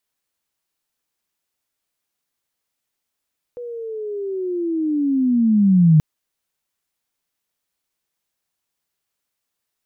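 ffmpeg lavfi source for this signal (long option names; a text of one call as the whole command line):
ffmpeg -f lavfi -i "aevalsrc='pow(10,(-28.5+20.5*t/2.43)/20)*sin(2*PI*(490*t-340*t*t/(2*2.43)))':duration=2.43:sample_rate=44100" out.wav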